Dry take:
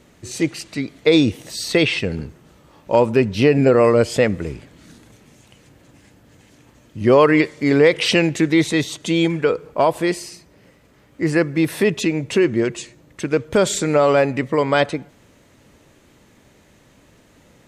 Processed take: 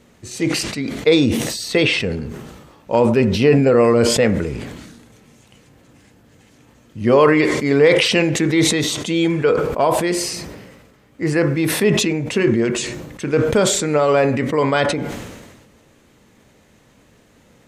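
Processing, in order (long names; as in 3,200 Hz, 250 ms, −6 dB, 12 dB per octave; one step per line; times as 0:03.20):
on a send at −10 dB: convolution reverb RT60 0.45 s, pre-delay 3 ms
on the sum: level that may fall only so fast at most 41 dB per second
level −1 dB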